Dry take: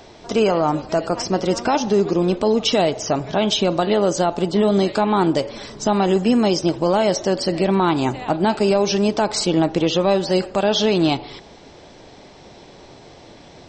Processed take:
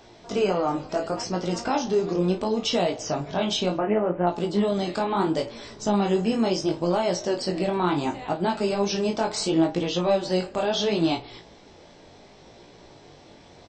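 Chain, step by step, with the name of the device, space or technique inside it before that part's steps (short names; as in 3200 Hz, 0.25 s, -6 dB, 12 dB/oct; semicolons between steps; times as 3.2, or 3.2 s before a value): 3.77–4.27 steep low-pass 2600 Hz 72 dB/oct; double-tracked vocal (doubler 34 ms -9.5 dB; chorus 0.71 Hz, delay 17 ms, depth 5.5 ms); gain -3.5 dB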